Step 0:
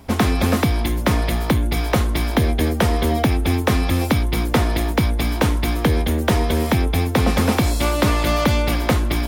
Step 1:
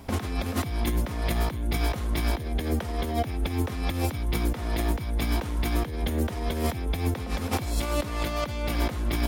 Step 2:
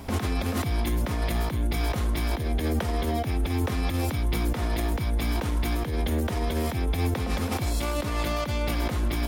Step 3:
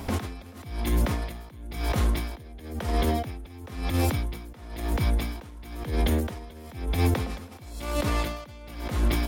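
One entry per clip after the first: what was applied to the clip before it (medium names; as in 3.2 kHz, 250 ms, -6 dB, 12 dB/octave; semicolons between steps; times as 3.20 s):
compressor with a negative ratio -21 dBFS, ratio -0.5; trim -5 dB
peak limiter -23 dBFS, peak gain reduction 9.5 dB; trim +5 dB
logarithmic tremolo 0.99 Hz, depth 21 dB; trim +3.5 dB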